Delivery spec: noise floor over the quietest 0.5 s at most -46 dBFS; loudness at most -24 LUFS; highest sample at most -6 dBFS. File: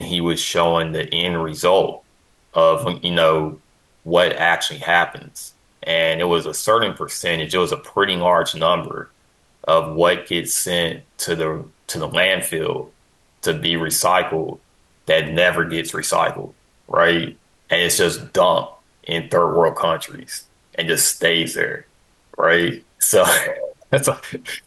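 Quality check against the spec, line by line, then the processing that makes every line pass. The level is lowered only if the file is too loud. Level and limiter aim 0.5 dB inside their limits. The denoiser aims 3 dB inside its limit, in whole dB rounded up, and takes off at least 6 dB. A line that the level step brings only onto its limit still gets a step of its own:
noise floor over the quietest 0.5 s -58 dBFS: pass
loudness -18.5 LUFS: fail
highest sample -4.0 dBFS: fail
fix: trim -6 dB

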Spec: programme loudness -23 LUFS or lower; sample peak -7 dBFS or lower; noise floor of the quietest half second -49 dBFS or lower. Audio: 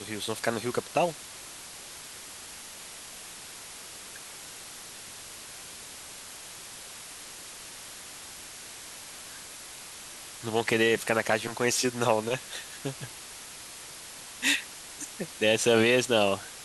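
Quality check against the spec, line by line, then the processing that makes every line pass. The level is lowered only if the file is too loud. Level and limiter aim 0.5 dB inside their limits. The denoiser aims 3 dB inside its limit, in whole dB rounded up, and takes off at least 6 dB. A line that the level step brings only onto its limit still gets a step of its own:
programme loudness -27.5 LUFS: pass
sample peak -9.5 dBFS: pass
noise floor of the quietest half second -44 dBFS: fail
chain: noise reduction 8 dB, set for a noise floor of -44 dBFS

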